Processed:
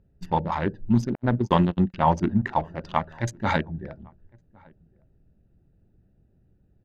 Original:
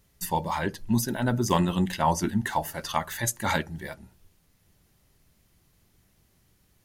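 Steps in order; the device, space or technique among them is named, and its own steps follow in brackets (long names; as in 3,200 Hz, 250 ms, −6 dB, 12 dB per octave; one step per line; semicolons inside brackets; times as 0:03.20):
adaptive Wiener filter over 41 samples
shout across a valley (high-frequency loss of the air 190 metres; slap from a distant wall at 190 metres, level −28 dB)
0:01.15–0:01.94: noise gate −25 dBFS, range −53 dB
level +4.5 dB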